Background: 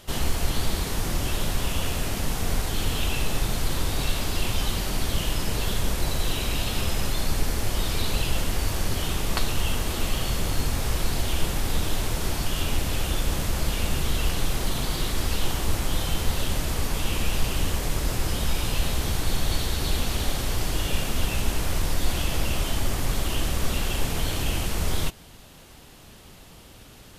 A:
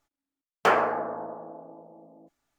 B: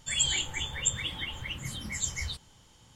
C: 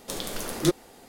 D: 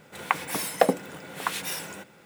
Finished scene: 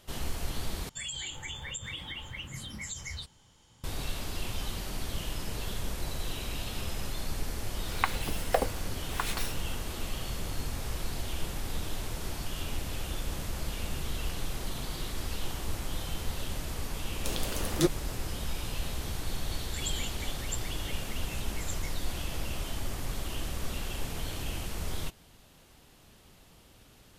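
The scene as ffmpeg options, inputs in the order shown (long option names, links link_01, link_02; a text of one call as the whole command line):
ffmpeg -i bed.wav -i cue0.wav -i cue1.wav -i cue2.wav -i cue3.wav -filter_complex "[2:a]asplit=2[link_01][link_02];[0:a]volume=-9.5dB[link_03];[link_01]acompressor=threshold=-31dB:ratio=6:attack=3.2:release=140:knee=1:detection=peak[link_04];[4:a]acrossover=split=490[link_05][link_06];[link_05]aeval=exprs='val(0)*(1-0.7/2+0.7/2*cos(2*PI*1.6*n/s))':channel_layout=same[link_07];[link_06]aeval=exprs='val(0)*(1-0.7/2-0.7/2*cos(2*PI*1.6*n/s))':channel_layout=same[link_08];[link_07][link_08]amix=inputs=2:normalize=0[link_09];[link_03]asplit=2[link_10][link_11];[link_10]atrim=end=0.894[link_12];[link_04]atrim=end=2.95,asetpts=PTS-STARTPTS,volume=-3dB[link_13];[link_11]atrim=start=3.836[link_14];[link_09]atrim=end=2.25,asetpts=PTS-STARTPTS,volume=-3.5dB,afade=type=in:duration=0.004:curve=hsin,afade=type=out:start_time=2.246:duration=0.004:curve=hsin,adelay=7730[link_15];[3:a]atrim=end=1.08,asetpts=PTS-STARTPTS,volume=-3dB,afade=type=in:duration=0.004:curve=hsin,afade=type=out:start_time=1.076:duration=0.004:curve=hsin,adelay=756756S[link_16];[link_02]atrim=end=2.95,asetpts=PTS-STARTPTS,volume=-10dB,afade=type=in:duration=0.004:curve=hsin,afade=type=out:start_time=2.946:duration=0.004:curve=hsin,adelay=19660[link_17];[link_12][link_13]acrossfade=duration=0.004:curve1=hsin:curve2=hsin[link_18];[link_18][link_14]acrossfade=duration=0.004:curve1=hsin:curve2=hsin[link_19];[link_19][link_15][link_16][link_17]amix=inputs=4:normalize=0" out.wav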